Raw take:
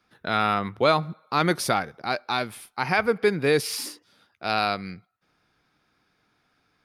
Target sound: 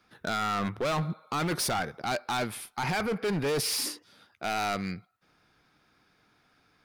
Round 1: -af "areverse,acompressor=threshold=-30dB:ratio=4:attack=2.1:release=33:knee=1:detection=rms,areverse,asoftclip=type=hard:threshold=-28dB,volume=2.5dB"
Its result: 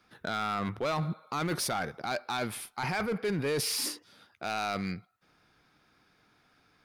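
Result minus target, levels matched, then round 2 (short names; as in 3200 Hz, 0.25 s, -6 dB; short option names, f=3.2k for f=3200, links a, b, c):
compressor: peak gain reduction +5.5 dB
-af "areverse,acompressor=threshold=-23dB:ratio=4:attack=2.1:release=33:knee=1:detection=rms,areverse,asoftclip=type=hard:threshold=-28dB,volume=2.5dB"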